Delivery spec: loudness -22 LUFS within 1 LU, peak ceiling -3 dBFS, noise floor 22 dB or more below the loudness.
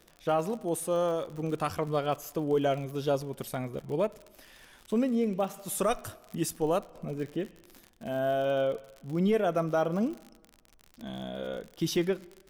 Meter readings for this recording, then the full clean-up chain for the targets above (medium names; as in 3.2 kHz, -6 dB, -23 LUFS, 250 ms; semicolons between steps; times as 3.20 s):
tick rate 57 per s; loudness -31.0 LUFS; peak level -17.5 dBFS; loudness target -22.0 LUFS
-> de-click; trim +9 dB